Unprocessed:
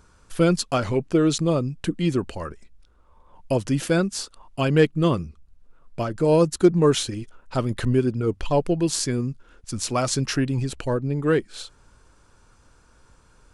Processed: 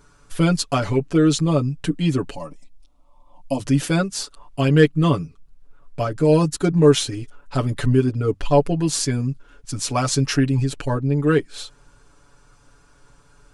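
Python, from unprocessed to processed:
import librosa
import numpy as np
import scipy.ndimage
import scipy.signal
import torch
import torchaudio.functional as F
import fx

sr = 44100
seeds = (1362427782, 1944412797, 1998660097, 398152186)

y = fx.fixed_phaser(x, sr, hz=410.0, stages=6, at=(2.36, 3.6))
y = y + 0.89 * np.pad(y, (int(7.0 * sr / 1000.0), 0))[:len(y)]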